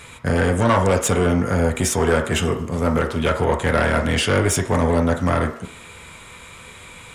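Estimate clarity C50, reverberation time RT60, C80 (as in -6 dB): 9.5 dB, 0.60 s, 13.0 dB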